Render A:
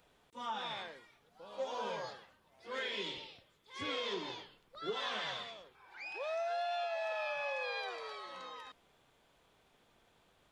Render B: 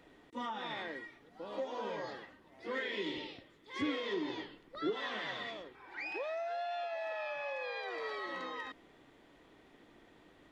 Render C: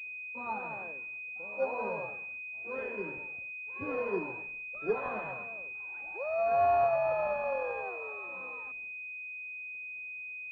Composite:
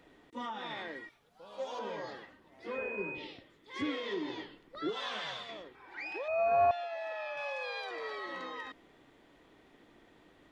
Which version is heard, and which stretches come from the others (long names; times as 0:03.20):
B
0:01.09–0:01.79: punch in from A
0:02.74–0:03.19: punch in from C, crossfade 0.10 s
0:04.89–0:05.49: punch in from A
0:06.28–0:06.71: punch in from C
0:07.37–0:07.91: punch in from A